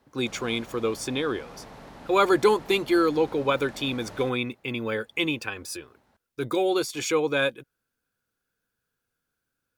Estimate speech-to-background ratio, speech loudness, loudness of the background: 19.5 dB, -26.0 LUFS, -45.5 LUFS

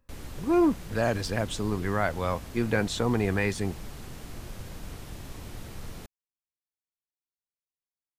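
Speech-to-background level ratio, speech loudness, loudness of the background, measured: 15.0 dB, -28.0 LUFS, -43.0 LUFS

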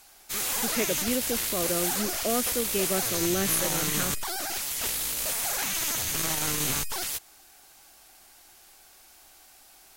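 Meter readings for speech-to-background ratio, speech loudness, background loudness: -4.0 dB, -31.0 LUFS, -27.0 LUFS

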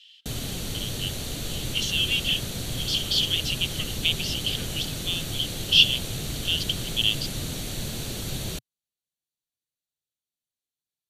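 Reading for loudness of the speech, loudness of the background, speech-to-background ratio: -25.0 LUFS, -31.5 LUFS, 6.5 dB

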